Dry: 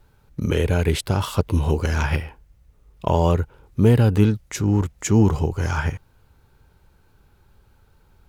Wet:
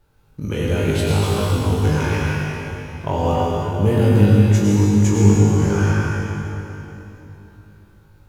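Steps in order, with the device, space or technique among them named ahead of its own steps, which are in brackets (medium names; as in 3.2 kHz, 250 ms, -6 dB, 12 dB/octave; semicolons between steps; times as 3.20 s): tunnel (flutter echo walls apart 3.4 m, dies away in 0.33 s; reverberation RT60 3.3 s, pre-delay 88 ms, DRR -4 dB); trim -5 dB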